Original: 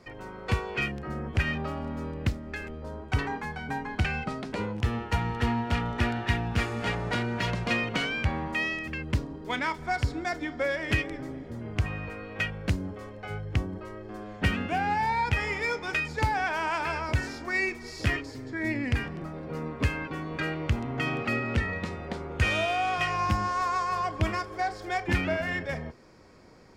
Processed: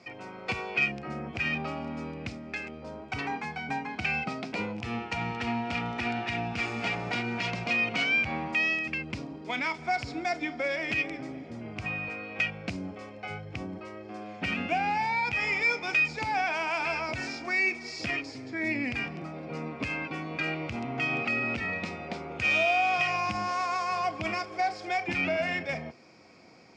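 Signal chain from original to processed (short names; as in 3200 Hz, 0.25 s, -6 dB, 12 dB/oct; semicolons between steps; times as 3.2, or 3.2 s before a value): notch 600 Hz, Q 12; limiter -21.5 dBFS, peak gain reduction 10.5 dB; speaker cabinet 150–7900 Hz, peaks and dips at 430 Hz -5 dB, 680 Hz +6 dB, 1000 Hz -3 dB, 1700 Hz -5 dB, 2400 Hz +10 dB, 5100 Hz +5 dB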